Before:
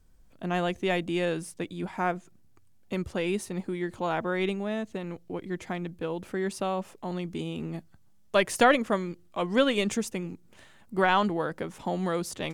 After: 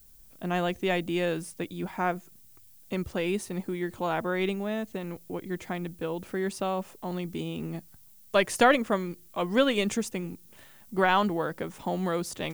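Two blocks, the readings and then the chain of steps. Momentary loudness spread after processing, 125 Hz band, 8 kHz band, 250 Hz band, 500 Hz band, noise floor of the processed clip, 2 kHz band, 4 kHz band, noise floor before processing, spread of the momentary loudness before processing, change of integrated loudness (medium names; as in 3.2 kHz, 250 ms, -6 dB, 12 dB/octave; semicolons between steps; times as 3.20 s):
12 LU, 0.0 dB, 0.0 dB, 0.0 dB, 0.0 dB, -54 dBFS, 0.0 dB, 0.0 dB, -57 dBFS, 12 LU, 0.0 dB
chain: added noise violet -57 dBFS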